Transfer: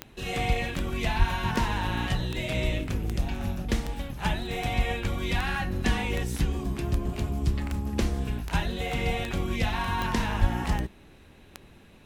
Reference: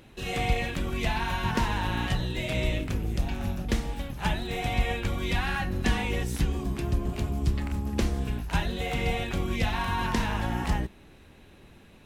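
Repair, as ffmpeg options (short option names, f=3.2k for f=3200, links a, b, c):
-filter_complex "[0:a]adeclick=t=4,asplit=3[a][b][c];[a]afade=t=out:st=1.18:d=0.02[d];[b]highpass=f=140:w=0.5412,highpass=f=140:w=1.3066,afade=t=in:st=1.18:d=0.02,afade=t=out:st=1.3:d=0.02[e];[c]afade=t=in:st=1.3:d=0.02[f];[d][e][f]amix=inputs=3:normalize=0,asplit=3[g][h][i];[g]afade=t=out:st=10.4:d=0.02[j];[h]highpass=f=140:w=0.5412,highpass=f=140:w=1.3066,afade=t=in:st=10.4:d=0.02,afade=t=out:st=10.52:d=0.02[k];[i]afade=t=in:st=10.52:d=0.02[l];[j][k][l]amix=inputs=3:normalize=0"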